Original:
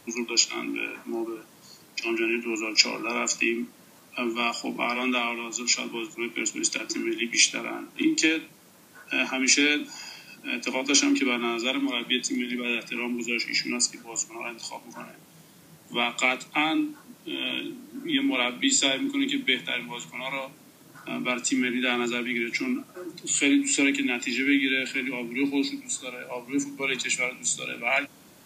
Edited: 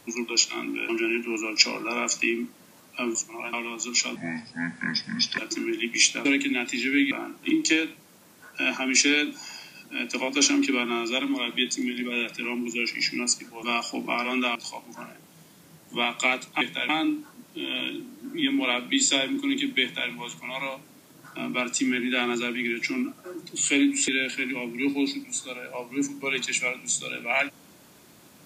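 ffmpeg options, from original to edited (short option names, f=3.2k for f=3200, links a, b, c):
-filter_complex "[0:a]asplit=13[a][b][c][d][e][f][g][h][i][j][k][l][m];[a]atrim=end=0.892[n];[b]atrim=start=2.078:end=4.342[o];[c]atrim=start=14.158:end=14.542[p];[d]atrim=start=5.258:end=5.894[q];[e]atrim=start=5.89:end=6.77,asetpts=PTS-STARTPTS,asetrate=31752,aresample=44100[r];[f]atrim=start=6.766:end=7.642[s];[g]atrim=start=23.788:end=24.652[t];[h]atrim=start=7.638:end=14.162[u];[i]atrim=start=4.338:end=5.262[v];[j]atrim=start=14.538:end=16.602[w];[k]atrim=start=19.528:end=19.812[x];[l]atrim=start=16.598:end=23.792[y];[m]atrim=start=24.648[z];[n][o]acrossfade=d=0.004:c1=hsin:c2=hsin[aa];[aa][p]acrossfade=d=0.004:c1=hsin:c2=hsin[ab];[ab][q]acrossfade=d=0.004:c1=hsin:c2=hsin[ac];[ac][r]acrossfade=d=0.004:c1=hsin:c2=hsin[ad];[ad][s]acrossfade=d=0.004:c1=hsin:c2=hsin[ae];[ae][t]acrossfade=d=0.004:c1=hsin:c2=hsin[af];[af][u]acrossfade=d=0.004:c1=hsin:c2=hsin[ag];[ag][v]acrossfade=d=0.004:c1=hsin:c2=hsin[ah];[ah][w]acrossfade=d=0.004:c1=hsin:c2=hsin[ai];[ai][x]acrossfade=d=0.004:c1=hsin:c2=hsin[aj];[aj][y]acrossfade=d=0.004:c1=hsin:c2=hsin[ak];[ak][z]acrossfade=d=0.004:c1=hsin:c2=hsin"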